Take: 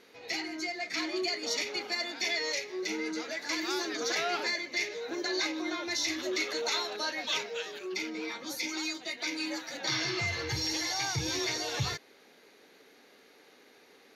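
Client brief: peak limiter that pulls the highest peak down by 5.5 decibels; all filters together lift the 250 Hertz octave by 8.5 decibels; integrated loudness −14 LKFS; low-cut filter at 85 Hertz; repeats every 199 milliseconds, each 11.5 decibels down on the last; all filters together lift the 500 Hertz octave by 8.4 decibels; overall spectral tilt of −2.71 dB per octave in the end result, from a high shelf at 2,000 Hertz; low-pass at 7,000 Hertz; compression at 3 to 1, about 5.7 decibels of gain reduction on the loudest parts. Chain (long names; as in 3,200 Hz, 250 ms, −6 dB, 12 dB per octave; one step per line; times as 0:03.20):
high-pass filter 85 Hz
low-pass filter 7,000 Hz
parametric band 250 Hz +8.5 dB
parametric band 500 Hz +7.5 dB
high-shelf EQ 2,000 Hz +6 dB
downward compressor 3 to 1, threshold −30 dBFS
brickwall limiter −23.5 dBFS
repeating echo 199 ms, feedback 27%, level −11.5 dB
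level +18 dB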